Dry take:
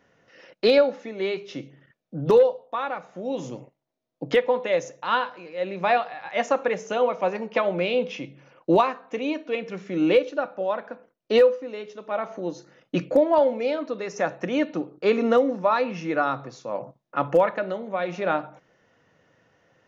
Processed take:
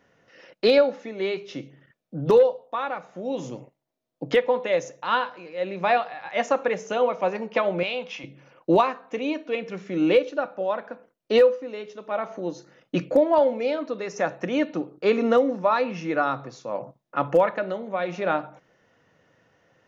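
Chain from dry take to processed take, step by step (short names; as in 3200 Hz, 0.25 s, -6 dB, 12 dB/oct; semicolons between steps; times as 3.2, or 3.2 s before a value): 7.83–8.24 resonant low shelf 580 Hz -9.5 dB, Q 1.5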